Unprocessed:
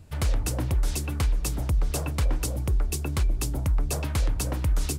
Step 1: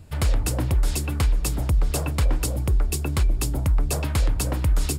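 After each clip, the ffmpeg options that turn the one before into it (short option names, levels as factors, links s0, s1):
-af "bandreject=f=6000:w=12,volume=1.5"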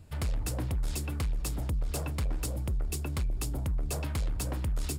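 -af "asoftclip=type=tanh:threshold=0.112,volume=0.473"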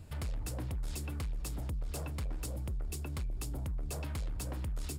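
-af "alimiter=level_in=3.35:limit=0.0631:level=0:latency=1:release=388,volume=0.299,volume=1.26"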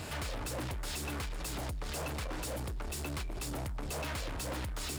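-filter_complex "[0:a]asplit=2[s0][s1];[s1]highpass=f=720:p=1,volume=39.8,asoftclip=type=tanh:threshold=0.0251[s2];[s0][s2]amix=inputs=2:normalize=0,lowpass=f=6700:p=1,volume=0.501"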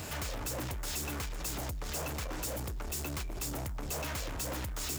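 -af "aexciter=amount=1.8:drive=4.5:freq=5700"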